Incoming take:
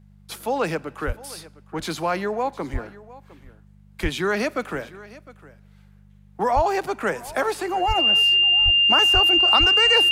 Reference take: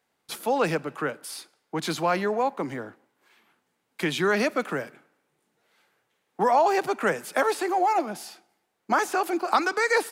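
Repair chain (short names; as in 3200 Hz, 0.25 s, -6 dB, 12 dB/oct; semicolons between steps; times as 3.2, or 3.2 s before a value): de-hum 49.9 Hz, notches 4; notch 2800 Hz, Q 30; de-plosive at 1.06/2.72/4.02/6.55/7.87/8.64/9.13/9.59; inverse comb 0.707 s -19.5 dB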